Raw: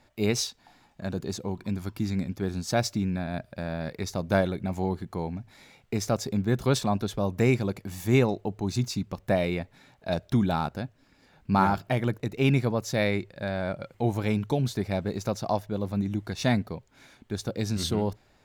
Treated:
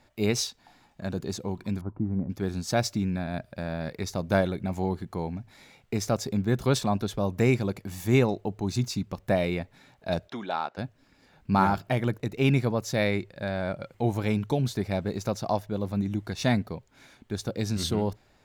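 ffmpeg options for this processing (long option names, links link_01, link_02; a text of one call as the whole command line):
ffmpeg -i in.wav -filter_complex "[0:a]asettb=1/sr,asplit=3[link_01][link_02][link_03];[link_01]atrim=end=1.814[link_04];[link_02]atrim=start=1.81:end=2.3,asetpts=PTS-STARTPTS,afade=type=in:duration=0.004:curve=qsin,afade=type=out:start_time=0.486:duration=0.004:curve=qsin,lowpass=frequency=1100:width=0.5412,lowpass=frequency=1100:width=1.3066[link_05];[link_03]atrim=start=2.296[link_06];[link_04][link_05]acrossfade=duration=0.004:curve1=hsin:curve2=qsin[link_07];[link_07][link_06]acrossfade=duration=0.004:curve1=qsin:curve2=hsin,asplit=3[link_08][link_09][link_10];[link_08]afade=type=out:start_time=10.28:duration=0.02[link_11];[link_09]highpass=500,lowpass=4500,afade=type=in:start_time=10.28:duration=0.02,afade=type=out:start_time=10.77:duration=0.02[link_12];[link_10]afade=type=in:start_time=10.77:duration=0.02[link_13];[link_11][link_12][link_13]amix=inputs=3:normalize=0" out.wav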